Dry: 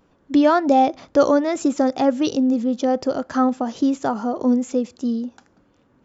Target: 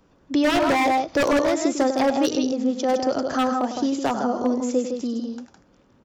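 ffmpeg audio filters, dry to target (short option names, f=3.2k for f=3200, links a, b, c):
-filter_complex "[0:a]lowshelf=f=120:g=3,acrossover=split=330[a][b];[a]acompressor=threshold=-30dB:ratio=6[c];[c][b]amix=inputs=2:normalize=0,equalizer=f=5.4k:t=o:w=0.62:g=4,aecho=1:1:99.13|160.3:0.316|0.501,acrossover=split=380[d][e];[e]aeval=exprs='0.15*(abs(mod(val(0)/0.15+3,4)-2)-1)':c=same[f];[d][f]amix=inputs=2:normalize=0"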